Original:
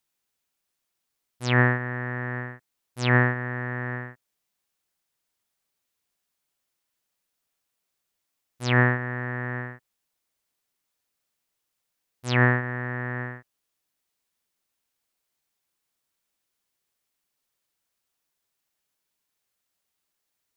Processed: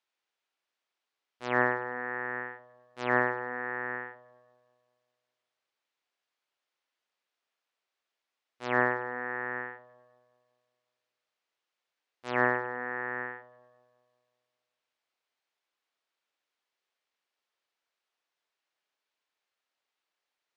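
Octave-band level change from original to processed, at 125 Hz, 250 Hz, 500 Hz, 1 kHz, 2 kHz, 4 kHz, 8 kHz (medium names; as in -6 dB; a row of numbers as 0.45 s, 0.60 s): -21.5 dB, -9.0 dB, -2.0 dB, -1.0 dB, -4.5 dB, -14.0 dB, under -15 dB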